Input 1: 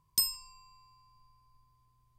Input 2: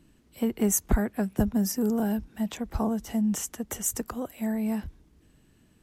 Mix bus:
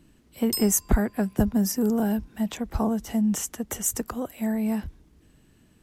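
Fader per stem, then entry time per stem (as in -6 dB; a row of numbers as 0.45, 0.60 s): -1.5, +2.5 dB; 0.35, 0.00 s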